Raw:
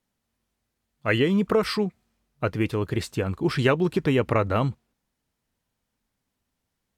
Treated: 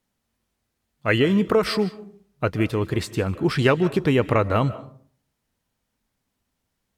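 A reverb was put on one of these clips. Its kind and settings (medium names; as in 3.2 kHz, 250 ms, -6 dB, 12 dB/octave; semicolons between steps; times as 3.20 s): algorithmic reverb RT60 0.51 s, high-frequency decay 0.45×, pre-delay 110 ms, DRR 16 dB; trim +2.5 dB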